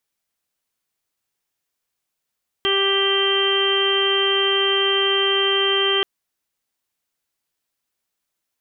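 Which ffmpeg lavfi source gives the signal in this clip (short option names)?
-f lavfi -i "aevalsrc='0.0891*sin(2*PI*393*t)+0.0224*sin(2*PI*786*t)+0.0473*sin(2*PI*1179*t)+0.0299*sin(2*PI*1572*t)+0.0398*sin(2*PI*1965*t)+0.0141*sin(2*PI*2358*t)+0.0355*sin(2*PI*2751*t)+0.112*sin(2*PI*3144*t)':d=3.38:s=44100"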